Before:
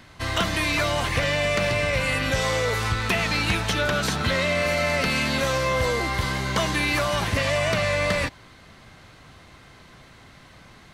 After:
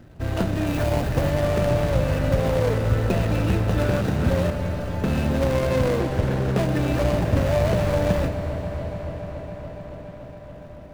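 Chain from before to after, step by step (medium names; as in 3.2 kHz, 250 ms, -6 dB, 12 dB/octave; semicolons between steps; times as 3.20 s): median filter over 41 samples; 0.67–1.30 s: treble shelf 11 kHz +6.5 dB; 4.50–5.04 s: inharmonic resonator 89 Hz, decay 0.42 s, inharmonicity 0.008; feedback echo behind a low-pass 283 ms, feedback 82%, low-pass 2.6 kHz, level -13 dB; on a send at -8 dB: reverberation RT60 5.8 s, pre-delay 5 ms; 5.99–6.60 s: on the sum: loudspeaker Doppler distortion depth 0.37 ms; trim +5 dB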